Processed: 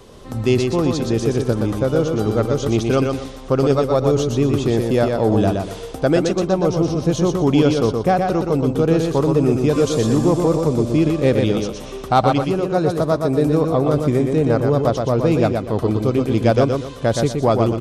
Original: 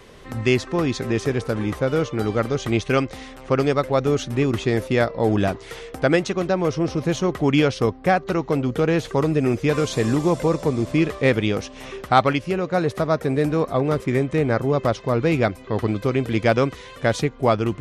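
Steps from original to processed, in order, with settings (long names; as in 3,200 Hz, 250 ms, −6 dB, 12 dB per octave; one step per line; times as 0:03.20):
parametric band 2,000 Hz −11.5 dB 0.97 octaves
in parallel at −6 dB: soft clipping −14 dBFS, distortion −16 dB
on the sum: repeating echo 121 ms, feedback 29%, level −4.5 dB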